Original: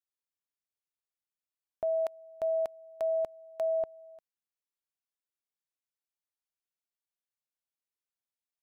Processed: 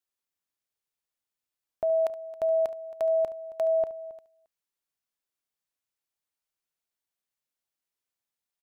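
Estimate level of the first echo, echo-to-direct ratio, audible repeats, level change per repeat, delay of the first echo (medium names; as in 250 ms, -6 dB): -16.0 dB, -14.0 dB, 2, no regular repeats, 71 ms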